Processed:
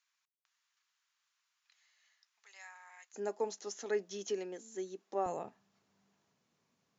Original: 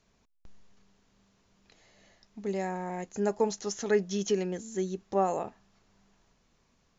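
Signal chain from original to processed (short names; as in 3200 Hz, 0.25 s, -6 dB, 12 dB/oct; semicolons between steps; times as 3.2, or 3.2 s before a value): HPF 1200 Hz 24 dB/oct, from 3.14 s 270 Hz, from 5.26 s 110 Hz; gain -8 dB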